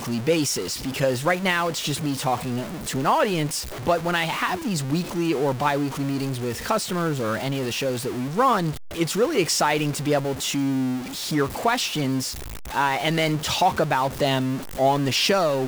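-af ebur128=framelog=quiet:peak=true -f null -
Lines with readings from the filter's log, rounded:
Integrated loudness:
  I:         -23.5 LUFS
  Threshold: -33.5 LUFS
Loudness range:
  LRA:         1.9 LU
  Threshold: -43.8 LUFS
  LRA low:   -24.8 LUFS
  LRA high:  -22.9 LUFS
True peak:
  Peak:       -9.8 dBFS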